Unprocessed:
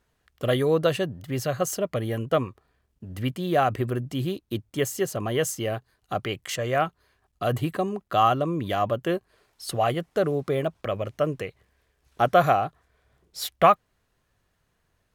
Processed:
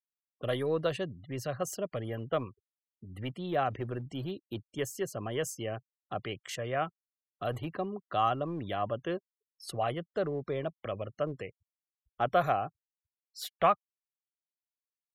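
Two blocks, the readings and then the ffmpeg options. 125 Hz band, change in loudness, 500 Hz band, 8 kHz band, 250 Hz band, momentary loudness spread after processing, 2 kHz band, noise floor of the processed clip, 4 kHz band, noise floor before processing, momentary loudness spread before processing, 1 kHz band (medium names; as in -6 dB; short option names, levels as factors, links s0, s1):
-9.0 dB, -8.5 dB, -8.0 dB, -9.5 dB, -9.0 dB, 12 LU, -8.0 dB, under -85 dBFS, -8.5 dB, -72 dBFS, 12 LU, -8.0 dB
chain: -filter_complex "[0:a]afftfilt=real='re*gte(hypot(re,im),0.00794)':imag='im*gte(hypot(re,im),0.00794)':win_size=1024:overlap=0.75,highshelf=f=11000:g=-4,acrossover=split=310|2800[s0][s1][s2];[s0]asoftclip=type=hard:threshold=0.0398[s3];[s3][s1][s2]amix=inputs=3:normalize=0,volume=0.398"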